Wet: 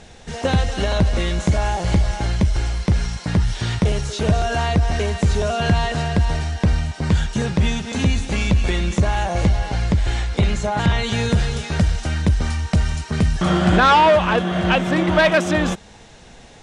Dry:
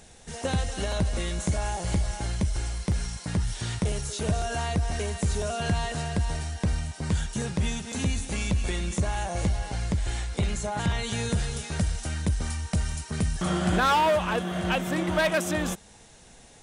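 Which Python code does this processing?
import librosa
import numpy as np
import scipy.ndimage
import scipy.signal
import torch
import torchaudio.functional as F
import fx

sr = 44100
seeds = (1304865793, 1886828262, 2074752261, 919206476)

y = scipy.signal.sosfilt(scipy.signal.butter(2, 4900.0, 'lowpass', fs=sr, output='sos'), x)
y = F.gain(torch.from_numpy(y), 9.0).numpy()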